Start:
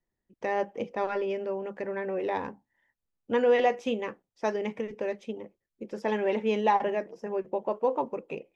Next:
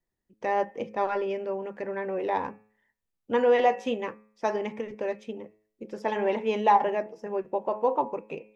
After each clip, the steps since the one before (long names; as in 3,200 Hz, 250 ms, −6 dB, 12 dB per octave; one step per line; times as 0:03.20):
hum removal 106.9 Hz, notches 25
dynamic equaliser 910 Hz, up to +5 dB, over −38 dBFS, Q 1.4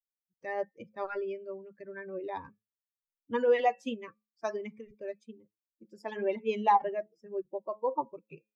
spectral dynamics exaggerated over time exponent 2
level −1.5 dB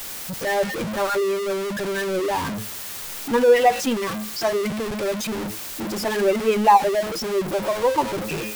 converter with a step at zero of −30.5 dBFS
level +8.5 dB